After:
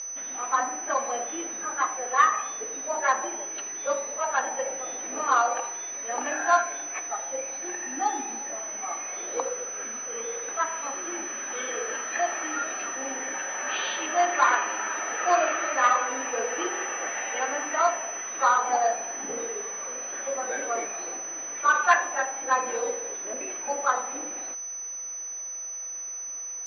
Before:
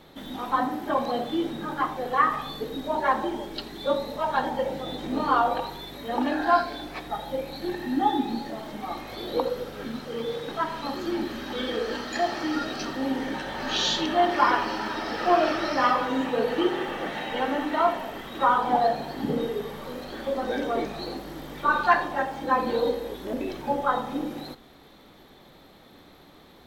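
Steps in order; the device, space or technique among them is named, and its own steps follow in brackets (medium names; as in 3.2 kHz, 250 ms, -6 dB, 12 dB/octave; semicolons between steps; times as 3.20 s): toy sound module (decimation joined by straight lines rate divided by 4×; class-D stage that switches slowly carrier 6 kHz; cabinet simulation 790–4800 Hz, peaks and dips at 900 Hz -7 dB, 2.5 kHz +4 dB, 3.6 kHz -5 dB); trim +4.5 dB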